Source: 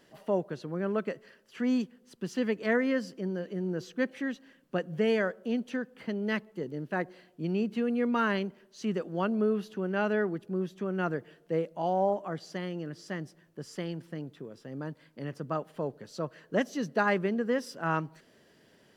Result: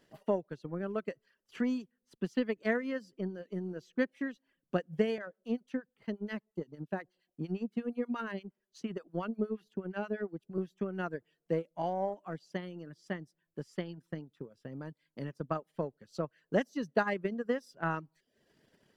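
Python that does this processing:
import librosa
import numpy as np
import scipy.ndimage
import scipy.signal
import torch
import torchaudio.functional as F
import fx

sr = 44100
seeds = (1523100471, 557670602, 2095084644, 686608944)

y = fx.harmonic_tremolo(x, sr, hz=8.5, depth_pct=70, crossover_hz=800.0, at=(5.18, 10.58))
y = fx.dereverb_blind(y, sr, rt60_s=0.52)
y = fx.low_shelf(y, sr, hz=87.0, db=6.5)
y = fx.transient(y, sr, attack_db=8, sustain_db=-6)
y = F.gain(torch.from_numpy(y), -7.0).numpy()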